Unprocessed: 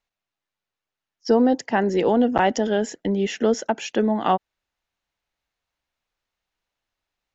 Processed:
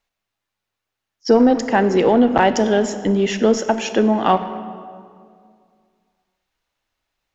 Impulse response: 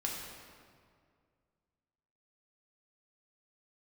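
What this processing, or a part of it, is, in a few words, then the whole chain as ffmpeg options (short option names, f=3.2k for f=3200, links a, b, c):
saturated reverb return: -filter_complex "[0:a]asplit=2[a][b];[1:a]atrim=start_sample=2205[c];[b][c]afir=irnorm=-1:irlink=0,asoftclip=type=tanh:threshold=-15dB,volume=-7dB[d];[a][d]amix=inputs=2:normalize=0,volume=2.5dB"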